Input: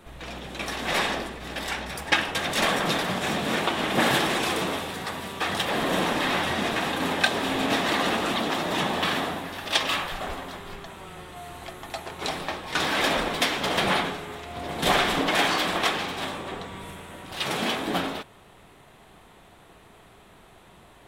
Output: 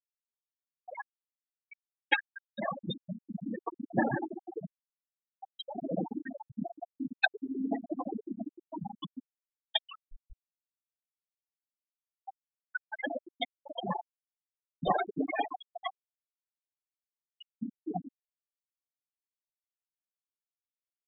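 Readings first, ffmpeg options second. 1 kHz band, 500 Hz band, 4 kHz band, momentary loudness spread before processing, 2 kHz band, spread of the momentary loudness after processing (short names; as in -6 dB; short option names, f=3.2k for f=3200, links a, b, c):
-12.0 dB, -11.5 dB, -16.0 dB, 15 LU, -12.0 dB, 18 LU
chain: -af "bandreject=f=1.2k:w=27,afftfilt=real='re*gte(hypot(re,im),0.282)':imag='im*gte(hypot(re,im),0.282)':win_size=1024:overlap=0.75,volume=-1.5dB"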